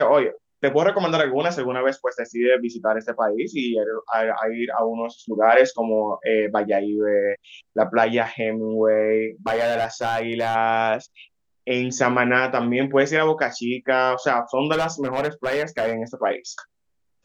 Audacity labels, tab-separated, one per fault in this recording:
9.460000	10.560000	clipped -17.5 dBFS
14.720000	15.940000	clipped -17.5 dBFS

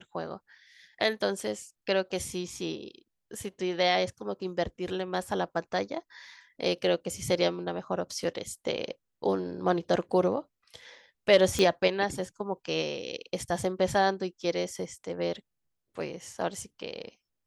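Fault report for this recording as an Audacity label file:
11.590000	11.590000	pop -13 dBFS

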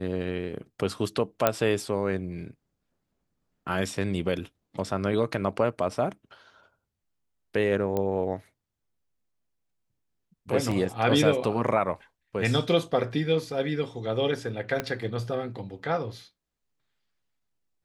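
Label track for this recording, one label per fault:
1.470000	1.470000	pop -6 dBFS
7.970000	7.970000	pop -16 dBFS
10.710000	10.710000	gap 4.9 ms
14.800000	14.800000	pop -13 dBFS

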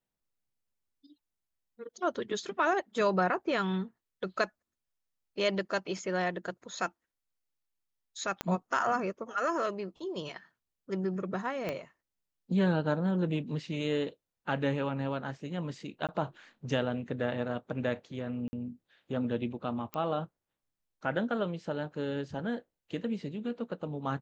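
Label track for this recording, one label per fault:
8.410000	8.410000	pop -16 dBFS
11.690000	11.690000	pop -20 dBFS
16.070000	16.090000	gap 17 ms
18.480000	18.530000	gap 50 ms
19.940000	19.940000	pop -21 dBFS

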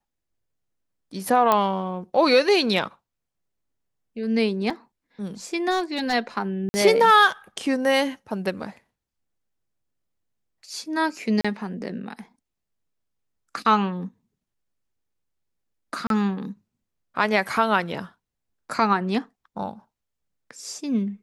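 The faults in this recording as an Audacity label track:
1.520000	1.520000	pop -6 dBFS
4.700000	4.700000	gap 4.2 ms
5.700000	6.140000	clipped -18 dBFS
6.690000	6.740000	gap 50 ms
11.410000	11.450000	gap 35 ms
16.070000	16.100000	gap 32 ms

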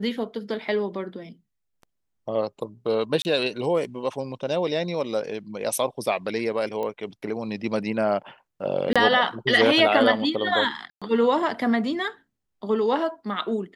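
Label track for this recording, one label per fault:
3.220000	3.250000	gap 29 ms
6.830000	6.830000	pop -19 dBFS
8.930000	8.960000	gap 26 ms
10.900000	11.020000	gap 0.116 s

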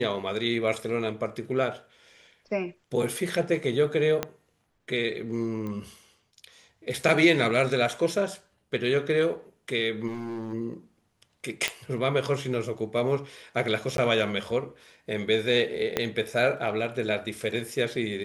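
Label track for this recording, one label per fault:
4.230000	4.230000	pop -12 dBFS
5.670000	5.670000	pop -24 dBFS
10.070000	10.540000	clipped -30.5 dBFS
11.680000	11.680000	pop -10 dBFS
13.970000	13.980000	gap 12 ms
15.970000	15.970000	pop -10 dBFS

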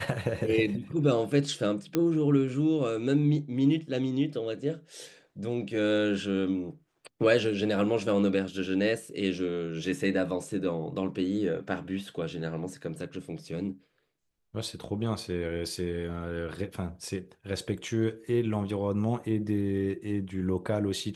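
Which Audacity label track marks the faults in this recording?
1.950000	1.950000	pop -13 dBFS

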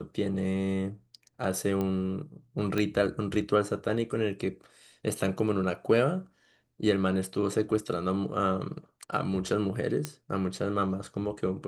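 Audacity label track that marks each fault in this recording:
1.810000	1.810000	pop -19 dBFS
2.780000	2.780000	pop -16 dBFS
10.050000	10.050000	pop -16 dBFS

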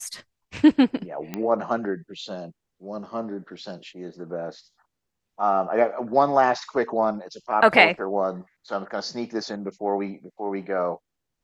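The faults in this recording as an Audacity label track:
1.340000	1.340000	pop -15 dBFS

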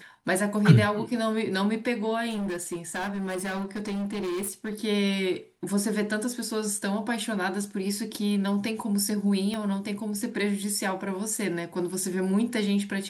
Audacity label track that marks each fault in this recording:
2.290000	4.740000	clipped -27.5 dBFS
9.540000	9.540000	pop -20 dBFS

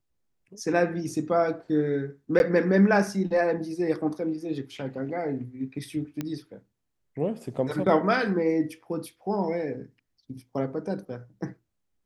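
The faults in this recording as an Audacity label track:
2.390000	2.400000	gap 11 ms
6.210000	6.210000	pop -17 dBFS

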